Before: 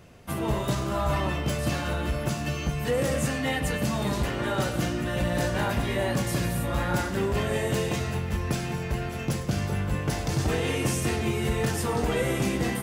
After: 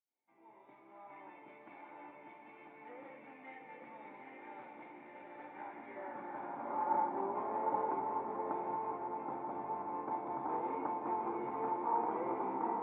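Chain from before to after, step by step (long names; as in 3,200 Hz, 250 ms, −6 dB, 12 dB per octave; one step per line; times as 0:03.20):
fade in at the beginning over 1.36 s
formant resonators in series u
in parallel at −3 dB: sine wavefolder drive 4 dB, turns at −21.5 dBFS
on the sum: feedback delay with all-pass diffusion 850 ms, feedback 47%, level −3.5 dB
high-pass filter sweep 2,200 Hz → 1,100 Hz, 0:05.41–0:07.01
on a send at −14 dB: convolution reverb RT60 1.0 s, pre-delay 3 ms
on the sum: level +4.5 dB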